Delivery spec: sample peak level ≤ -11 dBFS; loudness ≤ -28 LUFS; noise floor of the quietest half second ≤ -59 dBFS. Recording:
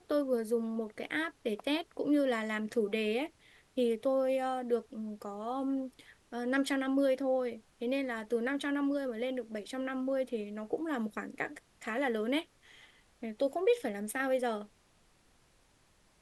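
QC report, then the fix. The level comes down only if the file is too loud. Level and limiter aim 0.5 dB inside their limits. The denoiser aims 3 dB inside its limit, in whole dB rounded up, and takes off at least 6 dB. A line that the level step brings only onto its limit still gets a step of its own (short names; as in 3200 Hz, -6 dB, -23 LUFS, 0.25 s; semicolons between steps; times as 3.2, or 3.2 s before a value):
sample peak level -18.0 dBFS: OK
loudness -34.0 LUFS: OK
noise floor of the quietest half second -67 dBFS: OK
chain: none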